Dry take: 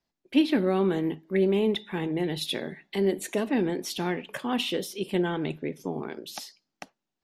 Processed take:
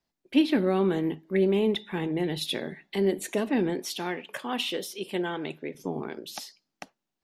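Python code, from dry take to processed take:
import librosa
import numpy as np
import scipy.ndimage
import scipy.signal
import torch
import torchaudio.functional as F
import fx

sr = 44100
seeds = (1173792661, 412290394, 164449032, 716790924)

y = fx.highpass(x, sr, hz=400.0, slope=6, at=(3.79, 5.75))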